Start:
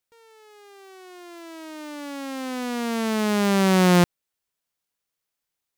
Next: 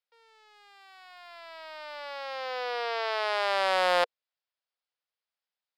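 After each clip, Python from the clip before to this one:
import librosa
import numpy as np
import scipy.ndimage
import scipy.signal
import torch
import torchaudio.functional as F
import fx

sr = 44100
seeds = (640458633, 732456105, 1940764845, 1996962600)

y = scipy.signal.sosfilt(scipy.signal.cheby1(5, 1.0, [480.0, 5100.0], 'bandpass', fs=sr, output='sos'), x)
y = fx.leveller(y, sr, passes=1)
y = y * librosa.db_to_amplitude(-3.5)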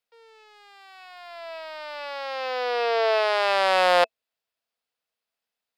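y = fx.small_body(x, sr, hz=(240.0, 450.0, 660.0, 2600.0), ring_ms=60, db=8)
y = y * librosa.db_to_amplitude(4.5)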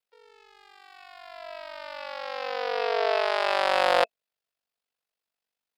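y = x * np.sin(2.0 * np.pi * 24.0 * np.arange(len(x)) / sr)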